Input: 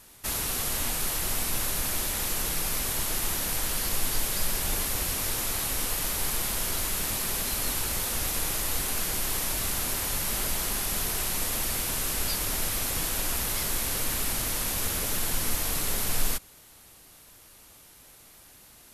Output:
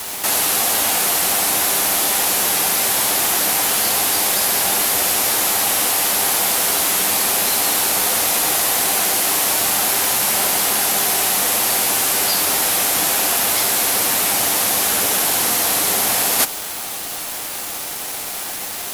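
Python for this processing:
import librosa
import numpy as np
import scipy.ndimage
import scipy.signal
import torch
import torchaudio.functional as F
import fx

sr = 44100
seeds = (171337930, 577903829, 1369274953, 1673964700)

p1 = scipy.signal.sosfilt(scipy.signal.bessel(2, 300.0, 'highpass', norm='mag', fs=sr, output='sos'), x)
p2 = fx.peak_eq(p1, sr, hz=760.0, db=7.0, octaves=0.39)
p3 = fx.room_early_taps(p2, sr, ms=(10, 71), db=(-8.0, -6.0))
p4 = fx.over_compress(p3, sr, threshold_db=-37.0, ratio=-0.5)
p5 = p3 + (p4 * librosa.db_to_amplitude(1.0))
p6 = fx.quant_dither(p5, sr, seeds[0], bits=6, dither='none')
y = p6 * librosa.db_to_amplitude(9.0)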